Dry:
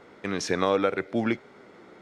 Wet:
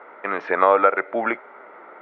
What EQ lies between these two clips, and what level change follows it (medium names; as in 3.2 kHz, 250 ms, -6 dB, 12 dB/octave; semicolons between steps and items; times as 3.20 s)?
cabinet simulation 470–2300 Hz, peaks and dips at 620 Hz +6 dB, 910 Hz +7 dB, 1.3 kHz +8 dB, 2 kHz +3 dB; +5.5 dB